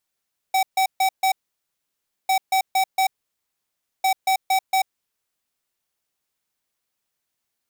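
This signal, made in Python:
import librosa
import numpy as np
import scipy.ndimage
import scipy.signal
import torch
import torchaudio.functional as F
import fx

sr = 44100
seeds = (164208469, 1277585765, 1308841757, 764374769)

y = fx.beep_pattern(sr, wave='square', hz=763.0, on_s=0.09, off_s=0.14, beeps=4, pause_s=0.97, groups=3, level_db=-18.5)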